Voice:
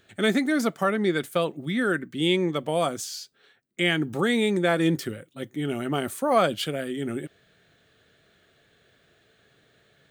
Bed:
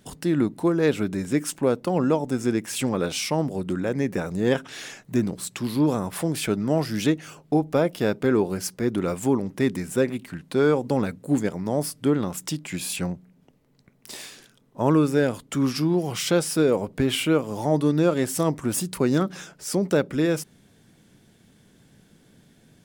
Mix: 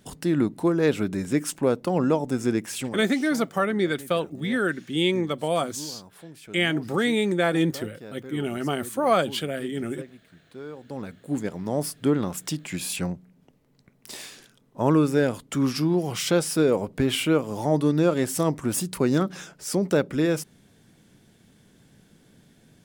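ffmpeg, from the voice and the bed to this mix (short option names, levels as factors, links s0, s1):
-filter_complex "[0:a]adelay=2750,volume=1[s0];[1:a]volume=7.94,afade=t=out:st=2.64:d=0.4:silence=0.11885,afade=t=in:st=10.76:d=1.16:silence=0.11885[s1];[s0][s1]amix=inputs=2:normalize=0"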